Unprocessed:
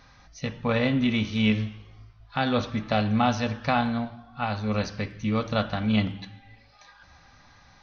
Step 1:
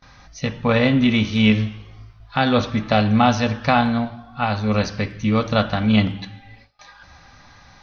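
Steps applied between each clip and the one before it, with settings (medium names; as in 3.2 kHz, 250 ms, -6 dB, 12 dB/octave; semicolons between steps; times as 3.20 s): gate with hold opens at -46 dBFS; trim +7 dB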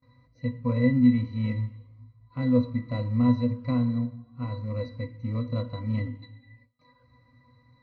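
in parallel at -9 dB: sample-and-hold 41×; on the sum: pitch-class resonator B, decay 0.14 s; trim -2 dB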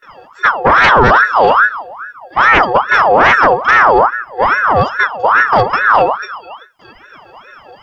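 sine folder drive 12 dB, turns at -9.5 dBFS; ring modulator with a swept carrier 1.1 kHz, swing 45%, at 2.4 Hz; trim +8 dB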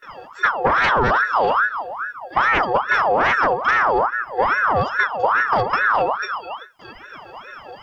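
compression, threshold -15 dBFS, peak gain reduction 9.5 dB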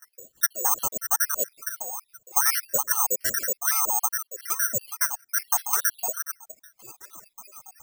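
random holes in the spectrogram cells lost 73%; careless resampling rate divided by 6×, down none, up zero stuff; trim -10.5 dB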